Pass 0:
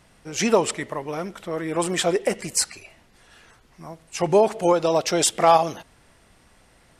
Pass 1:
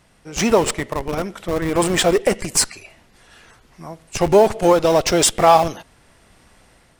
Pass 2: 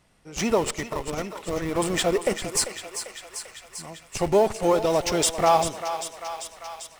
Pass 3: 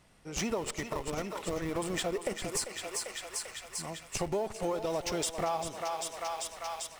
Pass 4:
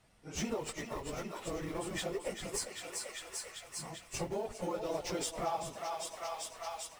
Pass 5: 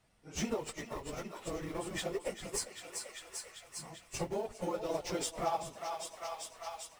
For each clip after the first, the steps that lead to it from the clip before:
level rider gain up to 4.5 dB; in parallel at -6 dB: Schmitt trigger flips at -20.5 dBFS
band-stop 1.6 kHz, Q 17; on a send: thinning echo 394 ms, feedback 74%, high-pass 600 Hz, level -9 dB; on the sum: trim -7 dB
compression 4:1, threshold -32 dBFS, peak gain reduction 14.5 dB
phase randomisation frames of 50 ms; trim -4.5 dB
upward expansion 1.5:1, over -45 dBFS; trim +2.5 dB

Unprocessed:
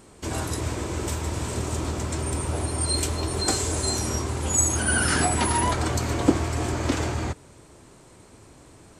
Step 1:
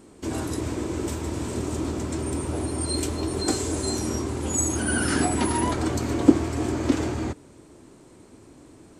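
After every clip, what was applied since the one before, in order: peaking EQ 290 Hz +9.5 dB 1.2 oct; trim -4 dB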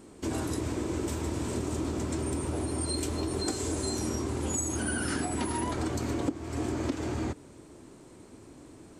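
compression 12:1, threshold -26 dBFS, peak gain reduction 19 dB; trim -1 dB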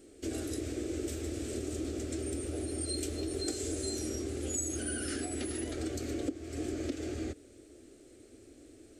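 static phaser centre 400 Hz, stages 4; trim -2.5 dB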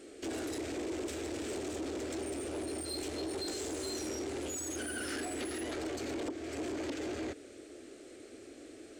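overdrive pedal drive 20 dB, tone 2.9 kHz, clips at -21.5 dBFS; in parallel at -8 dB: overload inside the chain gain 34.5 dB; on the sum: transformer saturation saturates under 420 Hz; trim -6 dB

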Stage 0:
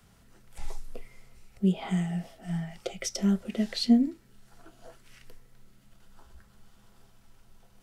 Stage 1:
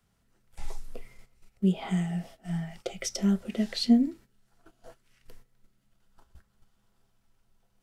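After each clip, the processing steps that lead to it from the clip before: gate -47 dBFS, range -12 dB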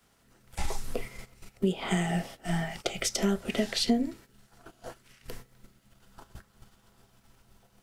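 spectral peaks clipped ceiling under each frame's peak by 13 dB; compression 3:1, threshold -30 dBFS, peak gain reduction 11 dB; trim +5 dB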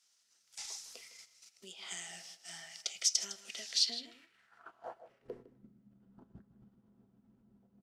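delay 157 ms -14 dB; band-pass sweep 5.7 kHz -> 220 Hz, 3.77–5.67 s; trim +3.5 dB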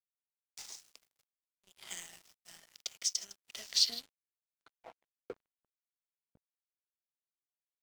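crossover distortion -47 dBFS; tremolo saw down 0.57 Hz, depth 70%; trim +4 dB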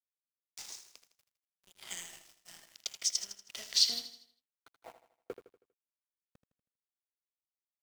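bit crusher 10-bit; on a send: feedback delay 80 ms, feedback 45%, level -11.5 dB; on the sum: trim +1.5 dB

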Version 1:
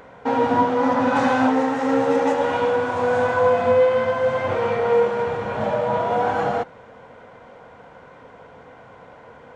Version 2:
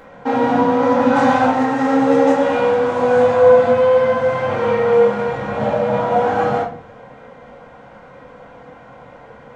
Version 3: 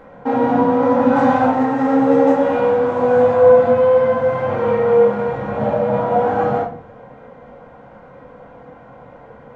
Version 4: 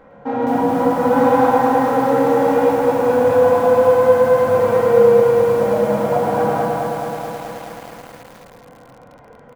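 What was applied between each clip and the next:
simulated room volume 390 m³, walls furnished, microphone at 2.2 m
treble shelf 2 kHz -12 dB; trim +1 dB
feedback delay 110 ms, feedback 51%, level -5 dB; bit-crushed delay 214 ms, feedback 80%, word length 6-bit, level -3.5 dB; trim -4 dB

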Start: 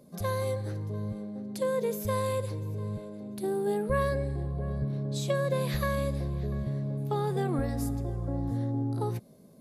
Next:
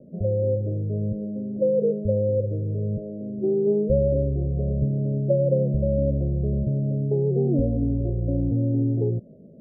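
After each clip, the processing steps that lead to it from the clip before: steep low-pass 640 Hz 72 dB/octave; trim +8 dB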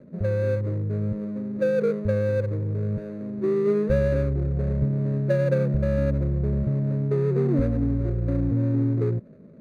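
median filter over 41 samples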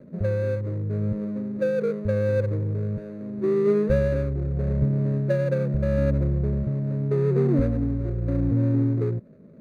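tremolo 0.81 Hz, depth 34%; trim +1.5 dB

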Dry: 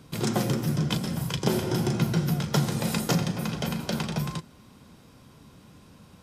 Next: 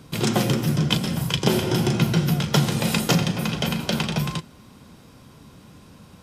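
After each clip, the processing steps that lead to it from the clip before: dynamic bell 2.9 kHz, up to +6 dB, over -49 dBFS, Q 1.7; trim +4.5 dB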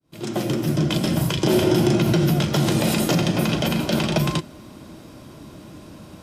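fade-in on the opening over 1.32 s; peak limiter -16 dBFS, peak gain reduction 10 dB; small resonant body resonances 330/610 Hz, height 11 dB, ringing for 50 ms; trim +4 dB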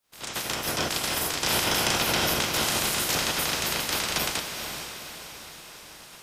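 spectral peaks clipped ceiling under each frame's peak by 30 dB; word length cut 12-bit, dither triangular; echo that smears into a reverb 461 ms, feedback 50%, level -7 dB; trim -7.5 dB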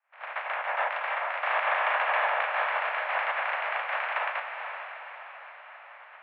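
mistuned SSB +260 Hz 330–2100 Hz; trim +3 dB

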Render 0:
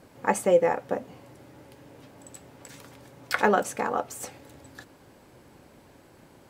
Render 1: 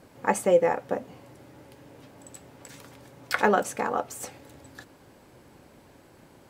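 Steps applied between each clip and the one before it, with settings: no audible change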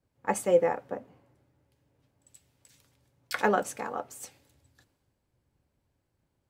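three bands expanded up and down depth 70%; trim -8 dB

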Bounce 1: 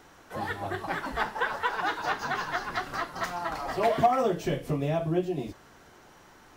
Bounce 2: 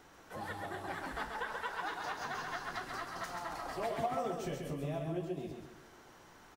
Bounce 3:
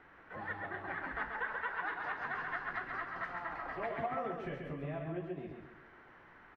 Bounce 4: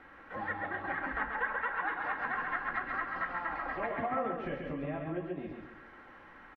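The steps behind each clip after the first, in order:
dynamic bell 9.3 kHz, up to +6 dB, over -57 dBFS, Q 0.9; compression 1.5:1, threshold -43 dBFS, peak gain reduction 9.5 dB; feedback delay 134 ms, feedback 40%, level -4.5 dB; trim -5 dB
FFT filter 820 Hz 0 dB, 1.9 kHz +8 dB, 7.2 kHz -27 dB; trim -2.5 dB
low-pass that closes with the level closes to 2.7 kHz, closed at -35.5 dBFS; comb 3.7 ms, depth 43%; trim +4 dB

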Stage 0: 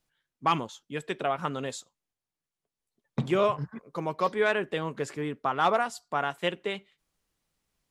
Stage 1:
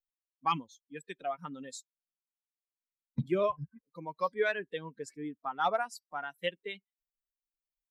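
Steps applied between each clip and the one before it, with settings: expander on every frequency bin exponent 2; trim -2 dB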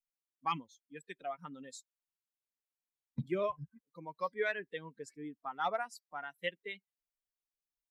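dynamic bell 2 kHz, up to +7 dB, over -55 dBFS, Q 4.5; trim -5 dB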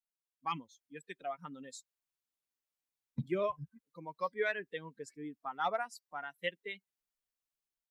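level rider gain up to 8 dB; trim -7.5 dB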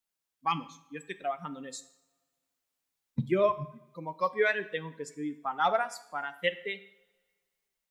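two-slope reverb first 0.64 s, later 1.8 s, from -20 dB, DRR 11.5 dB; trim +7 dB

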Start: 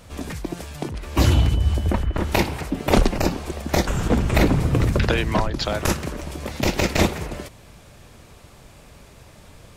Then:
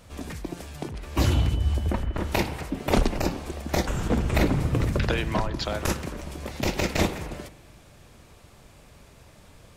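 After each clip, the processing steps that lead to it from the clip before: spring tank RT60 1.2 s, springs 42 ms, chirp 60 ms, DRR 14.5 dB; trim -5 dB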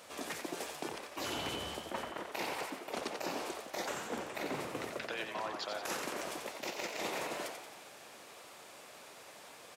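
high-pass 440 Hz 12 dB/octave; reverse; compression 16:1, threshold -38 dBFS, peak gain reduction 20 dB; reverse; frequency-shifting echo 89 ms, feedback 53%, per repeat +82 Hz, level -6.5 dB; trim +2 dB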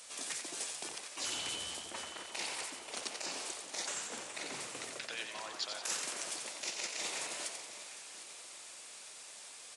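pre-emphasis filter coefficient 0.9; resampled via 22.05 kHz; echo whose repeats swap between lows and highs 377 ms, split 1 kHz, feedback 65%, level -10 dB; trim +9 dB

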